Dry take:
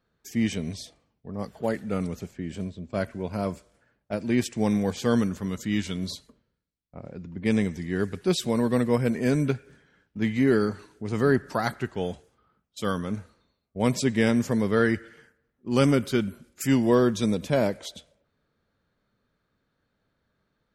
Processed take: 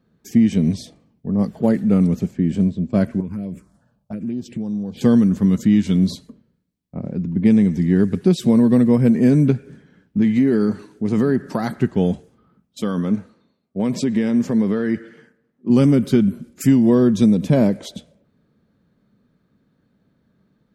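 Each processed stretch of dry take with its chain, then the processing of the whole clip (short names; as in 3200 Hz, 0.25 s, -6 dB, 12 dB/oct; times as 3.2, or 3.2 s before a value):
3.2–5.01 envelope phaser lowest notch 320 Hz, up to 2100 Hz, full sweep at -20 dBFS + compressor, threshold -38 dBFS
10.21–11.77 low shelf 170 Hz -8 dB + compressor 2.5:1, threshold -26 dBFS
12.82–15.7 HPF 300 Hz 6 dB/oct + high shelf 8400 Hz -10.5 dB + compressor, threshold -27 dBFS
whole clip: bell 200 Hz +15 dB 2 oct; notch 1400 Hz, Q 26; compressor, threshold -13 dBFS; gain +2.5 dB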